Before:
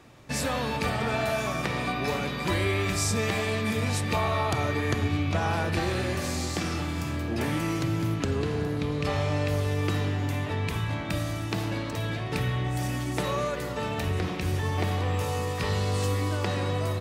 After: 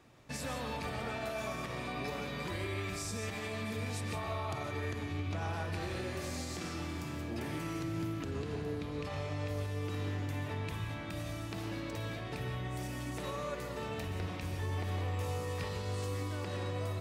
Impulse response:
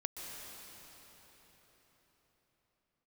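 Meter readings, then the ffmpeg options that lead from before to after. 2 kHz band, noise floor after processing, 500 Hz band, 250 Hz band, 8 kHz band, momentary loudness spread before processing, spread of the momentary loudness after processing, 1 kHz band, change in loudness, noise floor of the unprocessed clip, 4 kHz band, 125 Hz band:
-10.5 dB, -41 dBFS, -10.0 dB, -10.0 dB, -11.0 dB, 4 LU, 3 LU, -10.5 dB, -10.0 dB, -32 dBFS, -10.5 dB, -10.0 dB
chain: -filter_complex "[0:a]alimiter=limit=-21dB:level=0:latency=1:release=86[a];[1:a]atrim=start_sample=2205,afade=t=out:st=0.23:d=0.01,atrim=end_sample=10584[b];[a][b]afir=irnorm=-1:irlink=0,volume=-6dB"

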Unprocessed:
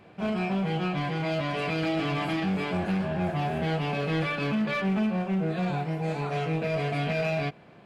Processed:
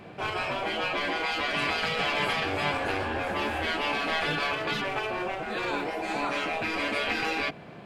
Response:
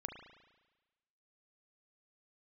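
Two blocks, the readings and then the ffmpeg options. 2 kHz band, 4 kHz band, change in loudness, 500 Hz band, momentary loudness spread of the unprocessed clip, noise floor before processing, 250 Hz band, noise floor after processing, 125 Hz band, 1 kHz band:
+5.5 dB, +7.0 dB, 0.0 dB, -1.5 dB, 3 LU, -52 dBFS, -8.5 dB, -45 dBFS, -12.5 dB, +3.0 dB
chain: -af "acontrast=28,bandreject=f=50:t=h:w=6,bandreject=f=100:t=h:w=6,afftfilt=real='re*lt(hypot(re,im),0.2)':imag='im*lt(hypot(re,im),0.2)':win_size=1024:overlap=0.75,volume=2dB"

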